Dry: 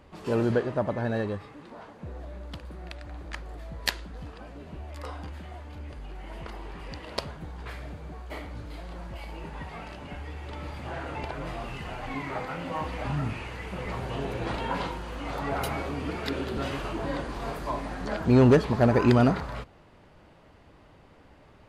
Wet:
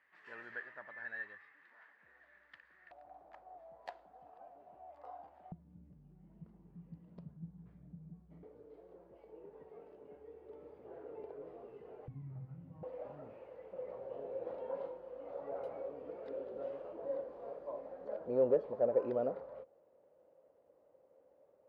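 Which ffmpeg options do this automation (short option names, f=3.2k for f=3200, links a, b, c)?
-af "asetnsamples=n=441:p=0,asendcmd='2.91 bandpass f 720;5.52 bandpass f 170;8.43 bandpass f 440;12.08 bandpass f 130;12.83 bandpass f 530',bandpass=f=1.8k:t=q:w=8.5:csg=0"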